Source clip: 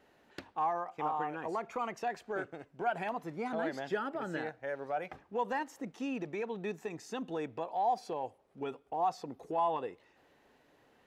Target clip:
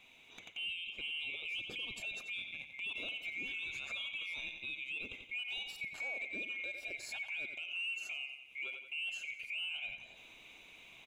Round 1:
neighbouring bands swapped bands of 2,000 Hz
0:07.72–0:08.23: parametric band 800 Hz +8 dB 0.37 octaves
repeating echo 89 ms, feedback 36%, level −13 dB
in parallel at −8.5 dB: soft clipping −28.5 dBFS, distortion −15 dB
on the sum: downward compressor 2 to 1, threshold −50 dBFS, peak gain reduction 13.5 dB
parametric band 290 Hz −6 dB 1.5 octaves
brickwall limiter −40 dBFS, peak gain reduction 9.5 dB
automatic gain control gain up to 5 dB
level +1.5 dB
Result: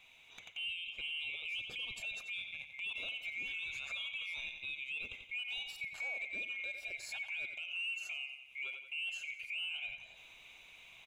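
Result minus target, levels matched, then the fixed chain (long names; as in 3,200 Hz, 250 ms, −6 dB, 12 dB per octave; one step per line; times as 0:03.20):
250 Hz band −8.0 dB
neighbouring bands swapped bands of 2,000 Hz
0:07.72–0:08.23: parametric band 800 Hz +8 dB 0.37 octaves
repeating echo 89 ms, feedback 36%, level −13 dB
in parallel at −8.5 dB: soft clipping −28.5 dBFS, distortion −15 dB
on the sum: downward compressor 2 to 1, threshold −50 dBFS, peak gain reduction 13.5 dB
parametric band 290 Hz +4 dB 1.5 octaves
brickwall limiter −40 dBFS, peak gain reduction 10 dB
automatic gain control gain up to 5 dB
level +1.5 dB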